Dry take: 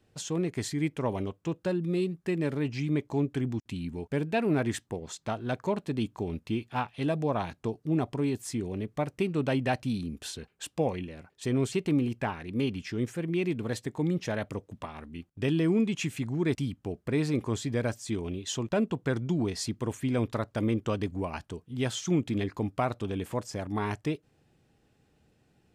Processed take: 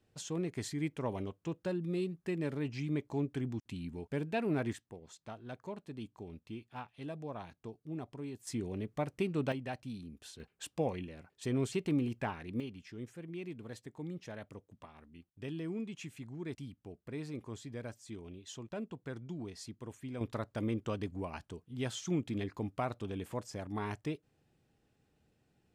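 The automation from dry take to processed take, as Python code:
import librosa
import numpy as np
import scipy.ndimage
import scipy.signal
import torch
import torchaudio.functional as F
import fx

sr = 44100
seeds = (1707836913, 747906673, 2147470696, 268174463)

y = fx.gain(x, sr, db=fx.steps((0.0, -6.5), (4.73, -14.0), (8.47, -5.0), (9.52, -12.5), (10.4, -5.5), (12.6, -14.0), (20.21, -7.0)))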